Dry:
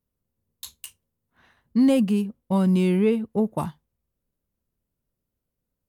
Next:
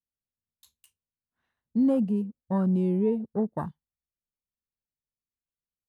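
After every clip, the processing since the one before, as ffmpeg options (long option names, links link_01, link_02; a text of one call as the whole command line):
ffmpeg -i in.wav -af "afwtdn=0.0251,volume=-4.5dB" out.wav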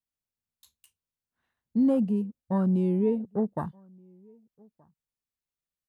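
ffmpeg -i in.wav -filter_complex "[0:a]asplit=2[link_01][link_02];[link_02]adelay=1224,volume=-29dB,highshelf=frequency=4000:gain=-27.6[link_03];[link_01][link_03]amix=inputs=2:normalize=0" out.wav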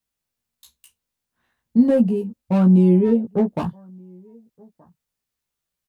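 ffmpeg -i in.wav -filter_complex "[0:a]acrossover=split=600[link_01][link_02];[link_02]asoftclip=type=hard:threshold=-37dB[link_03];[link_01][link_03]amix=inputs=2:normalize=0,asplit=2[link_04][link_05];[link_05]adelay=17,volume=-4dB[link_06];[link_04][link_06]amix=inputs=2:normalize=0,volume=8dB" out.wav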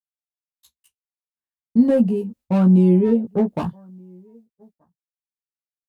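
ffmpeg -i in.wav -af "agate=range=-33dB:threshold=-43dB:ratio=3:detection=peak" out.wav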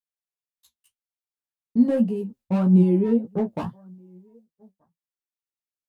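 ffmpeg -i in.wav -af "flanger=delay=4.9:depth=5.9:regen=57:speed=1.8:shape=triangular" out.wav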